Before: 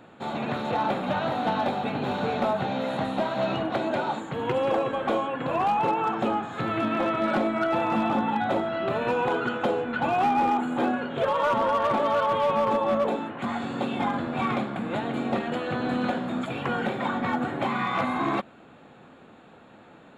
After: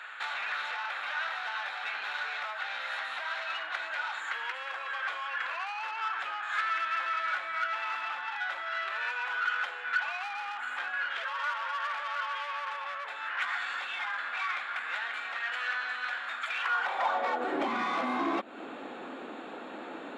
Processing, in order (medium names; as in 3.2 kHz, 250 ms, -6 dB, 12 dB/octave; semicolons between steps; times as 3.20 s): compression 10:1, threshold -34 dBFS, peak gain reduction 14 dB; overdrive pedal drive 16 dB, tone 4.8 kHz, clips at -23.5 dBFS; high-pass sweep 1.6 kHz -> 280 Hz, 16.58–17.66 s